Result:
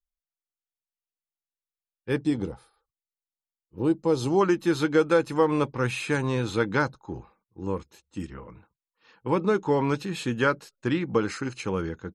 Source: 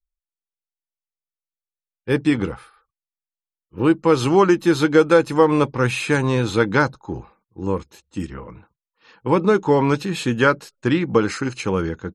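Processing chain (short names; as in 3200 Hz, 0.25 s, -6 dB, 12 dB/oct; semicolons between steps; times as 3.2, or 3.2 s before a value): 2.23–4.41 band shelf 1800 Hz -10 dB; gain -7 dB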